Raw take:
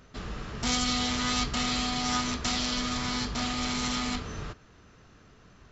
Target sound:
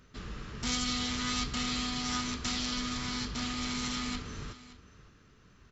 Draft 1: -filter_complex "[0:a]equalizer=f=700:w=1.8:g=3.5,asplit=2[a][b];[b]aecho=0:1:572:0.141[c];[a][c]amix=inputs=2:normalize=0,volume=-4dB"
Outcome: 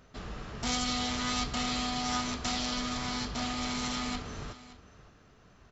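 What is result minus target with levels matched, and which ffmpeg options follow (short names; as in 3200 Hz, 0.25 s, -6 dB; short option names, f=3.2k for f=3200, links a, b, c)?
500 Hz band +4.5 dB
-filter_complex "[0:a]equalizer=f=700:w=1.8:g=-8,asplit=2[a][b];[b]aecho=0:1:572:0.141[c];[a][c]amix=inputs=2:normalize=0,volume=-4dB"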